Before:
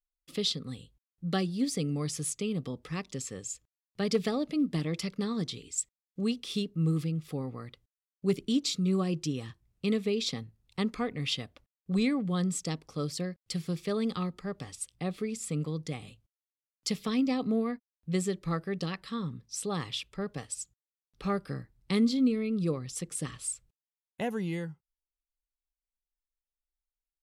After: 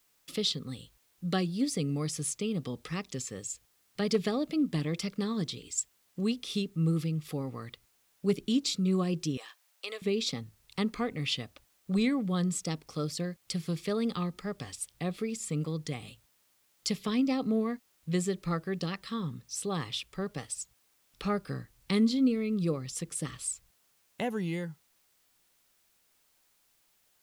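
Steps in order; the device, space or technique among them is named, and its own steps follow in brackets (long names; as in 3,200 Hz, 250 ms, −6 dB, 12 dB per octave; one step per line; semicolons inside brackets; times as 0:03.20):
noise-reduction cassette on a plain deck (one half of a high-frequency compander encoder only; tape wow and flutter; white noise bed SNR 37 dB)
0:09.37–0:10.02: high-pass filter 570 Hz 24 dB per octave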